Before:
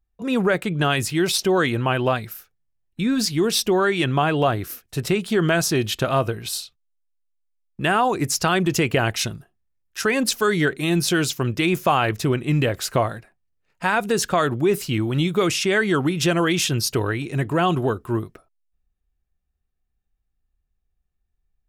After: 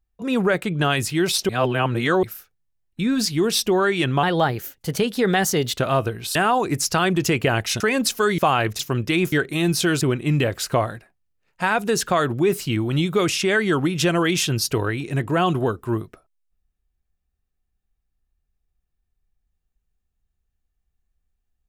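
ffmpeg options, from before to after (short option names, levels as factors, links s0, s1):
-filter_complex "[0:a]asplit=11[s0][s1][s2][s3][s4][s5][s6][s7][s8][s9][s10];[s0]atrim=end=1.492[s11];[s1]atrim=start=1.488:end=2.232,asetpts=PTS-STARTPTS,areverse[s12];[s2]atrim=start=2.228:end=4.234[s13];[s3]atrim=start=4.23:end=6,asetpts=PTS-STARTPTS,asetrate=50274,aresample=44100,atrim=end_sample=68471,asetpts=PTS-STARTPTS[s14];[s4]atrim=start=5.996:end=6.572[s15];[s5]atrim=start=7.848:end=9.302[s16];[s6]atrim=start=10.018:end=10.602[s17];[s7]atrim=start=11.818:end=12.232[s18];[s8]atrim=start=11.288:end=11.822[s19];[s9]atrim=start=10.598:end=11.292[s20];[s10]atrim=start=12.228[s21];[s11][s12]acrossfade=d=0.004:c1=hsin:c2=hsin[s22];[s22][s13]acrossfade=d=0.004:c1=hsin:c2=hsin[s23];[s23][s14]acrossfade=d=0.004:c1=hsin:c2=hsin[s24];[s24][s15]acrossfade=d=0.004:c1=hsin:c2=hsin[s25];[s25][s16]acrossfade=d=0.004:c1=hsin:c2=hsin[s26];[s26][s17]acrossfade=d=0.004:c1=hsin:c2=hsin[s27];[s27][s18]acrossfade=d=0.004:c1=hsin:c2=hsin[s28];[s28][s19]acrossfade=d=0.004:c1=hsin:c2=hsin[s29];[s29][s20]acrossfade=d=0.004:c1=hsin:c2=hsin[s30];[s30][s21]acrossfade=d=0.004:c1=hsin:c2=hsin"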